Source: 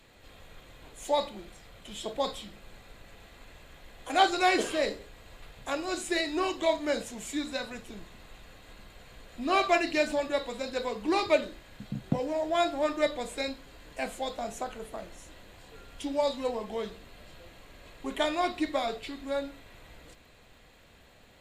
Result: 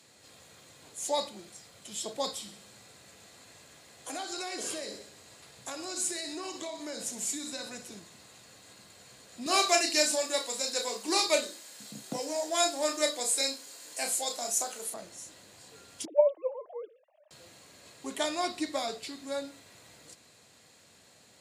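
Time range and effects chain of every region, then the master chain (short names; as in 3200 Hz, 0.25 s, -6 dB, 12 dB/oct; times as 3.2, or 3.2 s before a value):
2.3–7.99 compressor 5:1, threshold -33 dBFS + feedback echo 63 ms, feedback 60%, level -12 dB
9.46–14.94 HPF 310 Hz + high shelf 4900 Hz +11 dB + doubler 33 ms -7 dB
16.05–17.31 sine-wave speech + speaker cabinet 430–2900 Hz, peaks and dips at 620 Hz +10 dB, 1400 Hz -9 dB, 2100 Hz -9 dB + mismatched tape noise reduction decoder only
whole clip: HPF 98 Hz 24 dB/oct; band shelf 7300 Hz +12.5 dB; gain -3.5 dB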